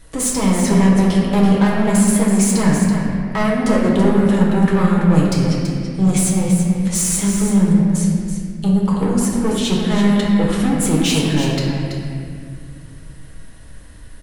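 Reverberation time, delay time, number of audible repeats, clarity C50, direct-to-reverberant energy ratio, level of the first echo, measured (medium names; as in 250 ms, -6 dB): 2.1 s, 331 ms, 1, -0.5 dB, -4.5 dB, -7.5 dB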